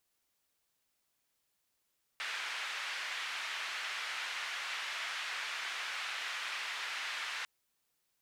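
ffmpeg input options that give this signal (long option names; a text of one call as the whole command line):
ffmpeg -f lavfi -i "anoisesrc=color=white:duration=5.25:sample_rate=44100:seed=1,highpass=frequency=1600,lowpass=frequency=2200,volume=-20.8dB" out.wav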